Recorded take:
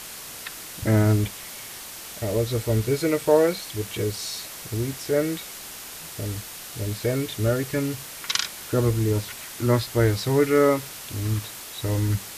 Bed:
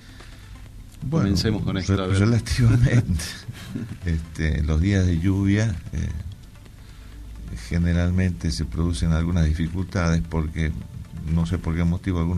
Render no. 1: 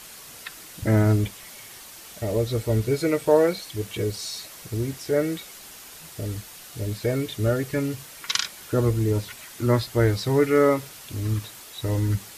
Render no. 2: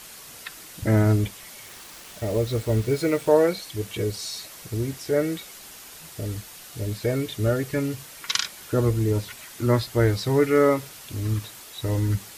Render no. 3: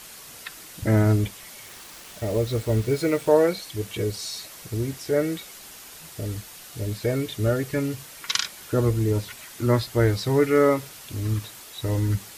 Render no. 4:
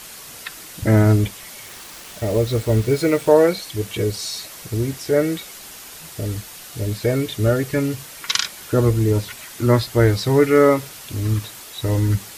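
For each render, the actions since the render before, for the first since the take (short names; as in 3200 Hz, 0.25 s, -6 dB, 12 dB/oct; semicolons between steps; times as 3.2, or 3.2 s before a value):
denoiser 6 dB, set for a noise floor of -39 dBFS
1.65–3.29 level-crossing sampler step -39.5 dBFS
nothing audible
gain +5 dB; limiter -2 dBFS, peak gain reduction 1 dB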